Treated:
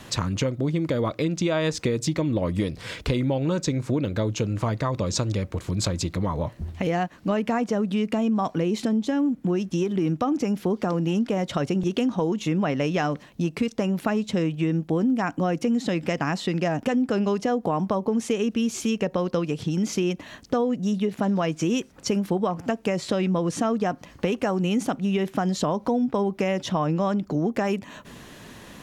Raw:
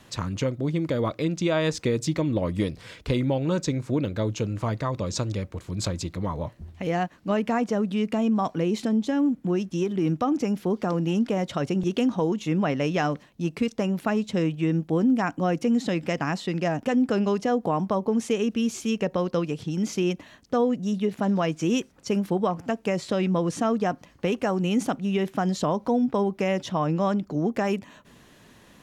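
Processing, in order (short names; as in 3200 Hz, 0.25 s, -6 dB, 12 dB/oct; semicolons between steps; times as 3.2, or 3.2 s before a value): compressor 2.5:1, threshold -34 dBFS, peak gain reduction 11 dB; gain +9 dB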